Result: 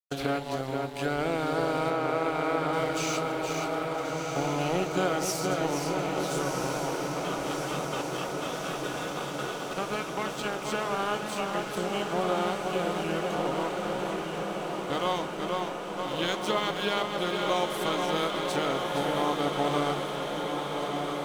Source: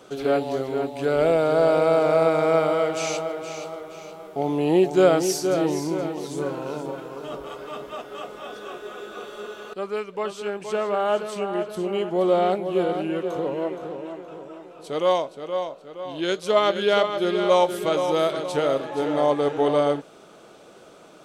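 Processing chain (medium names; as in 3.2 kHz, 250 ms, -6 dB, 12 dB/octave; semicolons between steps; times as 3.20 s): spectral peaks clipped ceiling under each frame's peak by 12 dB; gate -38 dBFS, range -9 dB; compression 2.5:1, threshold -32 dBFS, peak gain reduction 13.5 dB; crossover distortion -45 dBFS; 1.90–2.73 s: band-pass 210–3300 Hz; echo that smears into a reverb 1336 ms, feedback 74%, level -5 dB; on a send at -14 dB: reverberation RT60 3.6 s, pre-delay 4 ms; on the sum: trim +2.5 dB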